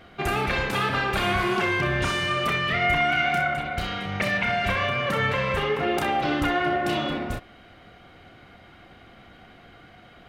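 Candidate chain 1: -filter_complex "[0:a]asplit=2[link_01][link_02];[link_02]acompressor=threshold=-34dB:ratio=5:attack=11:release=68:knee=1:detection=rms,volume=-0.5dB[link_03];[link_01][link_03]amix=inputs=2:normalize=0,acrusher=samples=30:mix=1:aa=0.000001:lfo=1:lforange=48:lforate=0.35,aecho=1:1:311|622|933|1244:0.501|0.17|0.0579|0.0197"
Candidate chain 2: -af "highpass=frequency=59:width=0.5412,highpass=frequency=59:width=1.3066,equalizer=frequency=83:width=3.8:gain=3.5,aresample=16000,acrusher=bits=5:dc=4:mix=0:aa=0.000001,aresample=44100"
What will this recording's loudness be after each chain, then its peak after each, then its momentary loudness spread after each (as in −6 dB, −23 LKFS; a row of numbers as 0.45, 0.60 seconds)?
−22.0, −23.0 LKFS; −8.5, −10.5 dBFS; 7, 7 LU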